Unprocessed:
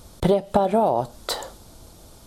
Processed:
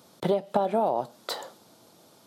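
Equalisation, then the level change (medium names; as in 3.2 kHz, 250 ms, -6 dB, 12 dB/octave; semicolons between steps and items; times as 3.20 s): high-pass 140 Hz 24 dB/octave; bass shelf 240 Hz -5 dB; peaking EQ 8.9 kHz -6 dB 1.1 oct; -4.5 dB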